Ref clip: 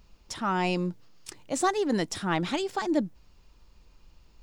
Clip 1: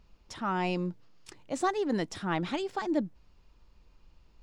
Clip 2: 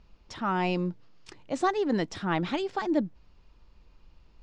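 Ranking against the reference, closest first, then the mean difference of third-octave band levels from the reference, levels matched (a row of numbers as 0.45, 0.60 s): 1, 2; 2.0, 3.0 dB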